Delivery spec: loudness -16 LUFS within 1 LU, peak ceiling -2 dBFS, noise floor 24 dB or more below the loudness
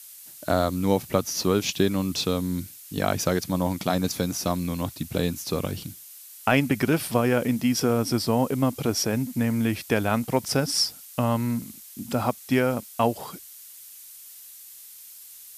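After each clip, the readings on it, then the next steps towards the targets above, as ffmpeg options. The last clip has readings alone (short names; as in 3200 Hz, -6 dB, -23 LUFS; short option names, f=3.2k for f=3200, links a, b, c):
noise floor -46 dBFS; noise floor target -50 dBFS; loudness -25.5 LUFS; peak -6.5 dBFS; loudness target -16.0 LUFS
-> -af "afftdn=nr=6:nf=-46"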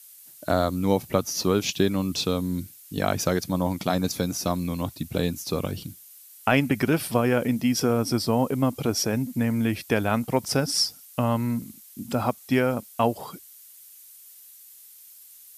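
noise floor -49 dBFS; noise floor target -50 dBFS
-> -af "afftdn=nr=6:nf=-49"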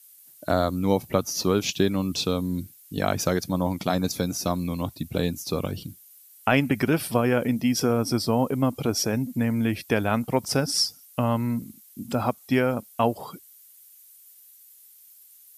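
noise floor -52 dBFS; loudness -25.5 LUFS; peak -6.5 dBFS; loudness target -16.0 LUFS
-> -af "volume=9.5dB,alimiter=limit=-2dB:level=0:latency=1"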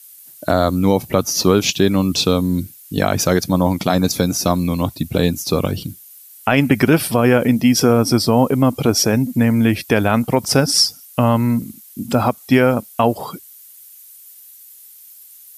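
loudness -16.5 LUFS; peak -2.0 dBFS; noise floor -43 dBFS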